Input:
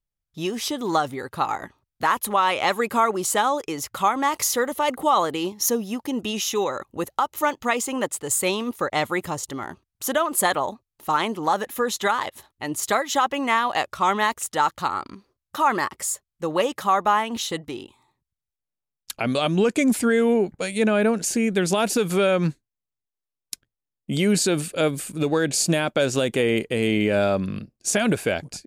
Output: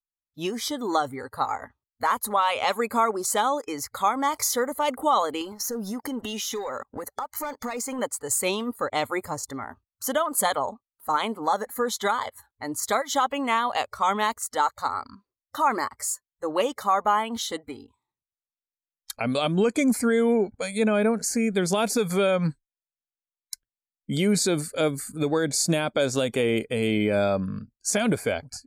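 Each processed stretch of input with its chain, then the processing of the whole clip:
5.41–7.99 low shelf 83 Hz -8.5 dB + sample leveller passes 2 + compressor 12:1, threshold -25 dBFS
whole clip: spectral noise reduction 19 dB; dynamic EQ 1800 Hz, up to -5 dB, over -41 dBFS, Q 4.1; gain -2 dB

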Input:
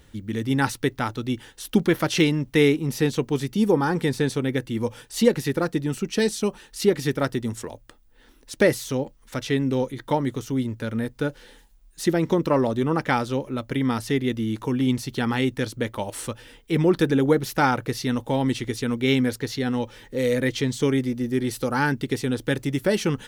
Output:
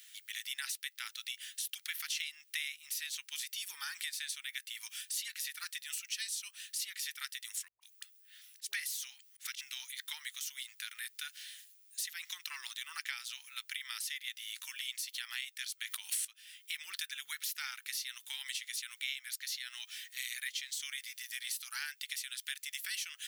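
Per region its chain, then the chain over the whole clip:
7.68–9.61 dispersion highs, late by 0.13 s, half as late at 390 Hz + auto swell 0.128 s
15.85–16.25 low shelf 230 Hz +8 dB + fast leveller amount 100%
whole clip: inverse Chebyshev high-pass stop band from 610 Hz, stop band 60 dB; high shelf 8700 Hz +9 dB; compressor 4:1, threshold -41 dBFS; gain +3 dB

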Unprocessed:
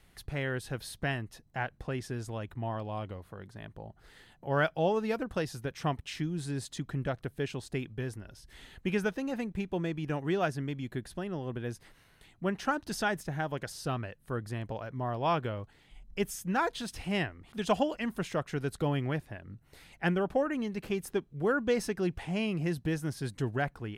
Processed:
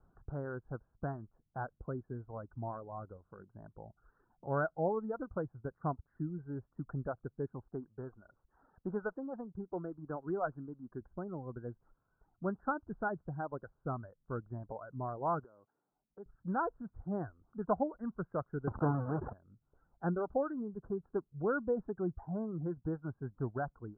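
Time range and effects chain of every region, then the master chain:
7.67–11.01 low shelf 120 Hz -12 dB + running maximum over 3 samples
15.44–16.26 HPF 260 Hz + compressor, threshold -40 dBFS
18.67–19.33 half-waves squared off + HPF 99 Hz + sustainer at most 40 dB/s
whole clip: steep low-pass 1500 Hz 96 dB/oct; reverb removal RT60 1.4 s; gain -4 dB

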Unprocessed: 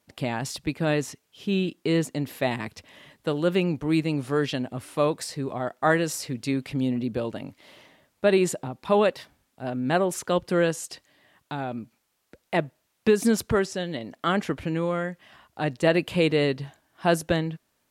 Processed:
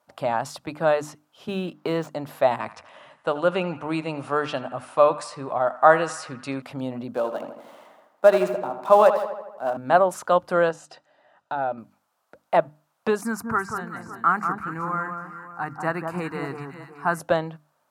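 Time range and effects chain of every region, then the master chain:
1.48–2.08 median filter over 5 samples + three-band squash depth 70%
2.59–6.62 brick-wall FIR low-pass 11000 Hz + bell 2600 Hz +5 dB 0.39 oct + narrowing echo 82 ms, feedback 68%, band-pass 1500 Hz, level -14 dB
7.14–9.77 switching dead time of 0.059 ms + HPF 170 Hz 24 dB/oct + darkening echo 80 ms, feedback 62%, low-pass 3500 Hz, level -9 dB
10.69–11.78 air absorption 76 m + notches 50/100/150/200/250/300 Hz + notch comb 1100 Hz
13.21–17.2 short-mantissa float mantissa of 6-bit + fixed phaser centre 1400 Hz, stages 4 + echo with dull and thin repeats by turns 0.187 s, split 1400 Hz, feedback 59%, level -5 dB
whole clip: HPF 100 Hz; band shelf 900 Hz +13 dB; notches 50/100/150/200/250/300 Hz; gain -4.5 dB

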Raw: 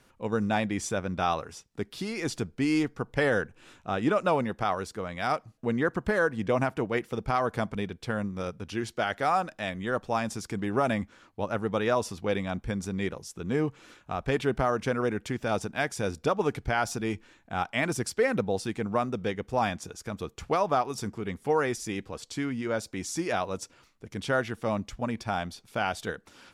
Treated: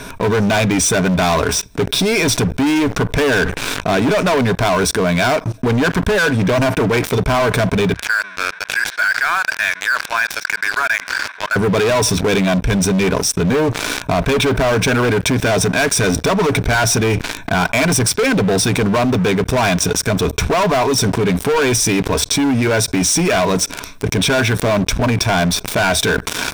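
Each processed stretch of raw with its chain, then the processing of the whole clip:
7.92–11.56 zero-crossing step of -39.5 dBFS + ladder band-pass 1800 Hz, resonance 60% + mismatched tape noise reduction decoder only
whole clip: ripple EQ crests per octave 1.6, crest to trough 11 dB; sample leveller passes 5; fast leveller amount 70%; gain -1.5 dB

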